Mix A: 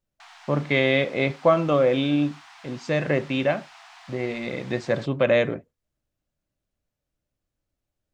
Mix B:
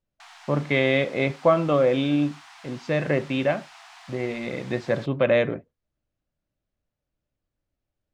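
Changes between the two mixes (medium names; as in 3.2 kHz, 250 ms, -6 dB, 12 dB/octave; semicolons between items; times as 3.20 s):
background: remove distance through air 130 m; master: add distance through air 100 m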